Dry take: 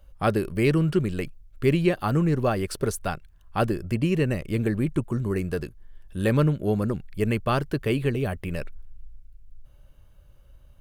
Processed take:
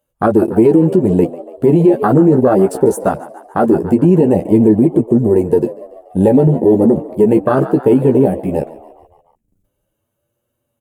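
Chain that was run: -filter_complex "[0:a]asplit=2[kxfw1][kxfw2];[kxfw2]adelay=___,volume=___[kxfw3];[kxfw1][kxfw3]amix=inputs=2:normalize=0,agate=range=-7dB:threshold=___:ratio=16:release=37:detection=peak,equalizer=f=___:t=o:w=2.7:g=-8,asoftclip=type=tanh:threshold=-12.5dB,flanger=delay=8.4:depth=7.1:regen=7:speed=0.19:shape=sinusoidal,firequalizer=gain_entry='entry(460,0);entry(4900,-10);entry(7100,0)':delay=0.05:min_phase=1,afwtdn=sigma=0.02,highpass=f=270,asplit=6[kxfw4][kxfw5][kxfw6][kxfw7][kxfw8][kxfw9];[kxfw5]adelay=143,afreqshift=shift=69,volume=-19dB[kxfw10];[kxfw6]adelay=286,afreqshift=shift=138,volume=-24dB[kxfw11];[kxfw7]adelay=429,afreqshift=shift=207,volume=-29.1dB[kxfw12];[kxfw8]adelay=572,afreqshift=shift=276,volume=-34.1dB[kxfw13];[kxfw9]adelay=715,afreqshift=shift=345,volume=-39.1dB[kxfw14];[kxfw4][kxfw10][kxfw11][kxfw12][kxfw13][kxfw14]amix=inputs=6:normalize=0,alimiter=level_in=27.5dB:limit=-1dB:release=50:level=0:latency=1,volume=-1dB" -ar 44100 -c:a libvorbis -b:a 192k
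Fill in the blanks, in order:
12, -12.5dB, -42dB, 1300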